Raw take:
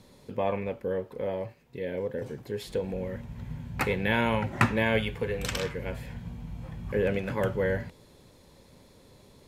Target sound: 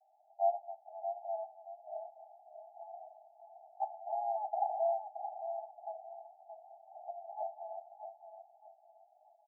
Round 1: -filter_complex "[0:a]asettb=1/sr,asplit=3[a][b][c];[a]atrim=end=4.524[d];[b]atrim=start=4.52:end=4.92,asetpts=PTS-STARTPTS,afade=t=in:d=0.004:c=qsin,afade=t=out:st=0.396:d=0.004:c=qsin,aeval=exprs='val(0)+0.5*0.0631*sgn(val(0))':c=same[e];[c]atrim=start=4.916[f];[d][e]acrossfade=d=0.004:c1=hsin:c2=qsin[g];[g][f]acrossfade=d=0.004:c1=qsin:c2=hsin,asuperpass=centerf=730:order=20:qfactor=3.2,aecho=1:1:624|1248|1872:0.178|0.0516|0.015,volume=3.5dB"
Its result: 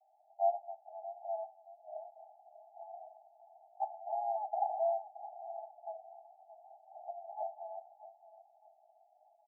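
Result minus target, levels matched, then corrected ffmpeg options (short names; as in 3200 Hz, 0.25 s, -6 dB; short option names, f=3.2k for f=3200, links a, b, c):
echo-to-direct -6.5 dB
-filter_complex "[0:a]asettb=1/sr,asplit=3[a][b][c];[a]atrim=end=4.524[d];[b]atrim=start=4.52:end=4.92,asetpts=PTS-STARTPTS,afade=t=in:d=0.004:c=qsin,afade=t=out:st=0.396:d=0.004:c=qsin,aeval=exprs='val(0)+0.5*0.0631*sgn(val(0))':c=same[e];[c]atrim=start=4.916[f];[d][e]acrossfade=d=0.004:c1=hsin:c2=qsin[g];[g][f]acrossfade=d=0.004:c1=qsin:c2=hsin,asuperpass=centerf=730:order=20:qfactor=3.2,aecho=1:1:624|1248|1872:0.376|0.109|0.0316,volume=3.5dB"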